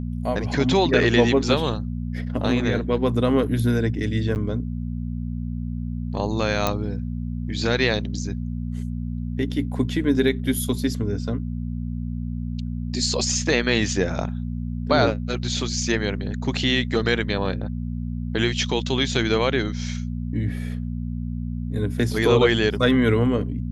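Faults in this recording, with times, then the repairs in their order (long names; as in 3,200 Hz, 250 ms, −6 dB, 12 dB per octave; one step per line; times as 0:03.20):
mains hum 60 Hz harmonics 4 −28 dBFS
0:04.35–0:04.36: drop-out 9.5 ms
0:06.67: click −6 dBFS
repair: click removal
hum removal 60 Hz, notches 4
repair the gap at 0:04.35, 9.5 ms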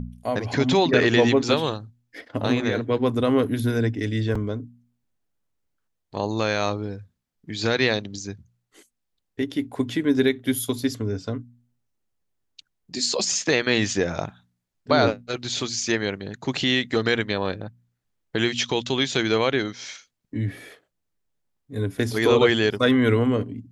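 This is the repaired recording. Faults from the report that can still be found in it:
none of them is left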